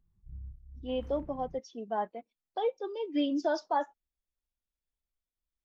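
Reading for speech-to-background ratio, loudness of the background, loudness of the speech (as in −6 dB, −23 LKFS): 15.5 dB, −49.5 LKFS, −34.0 LKFS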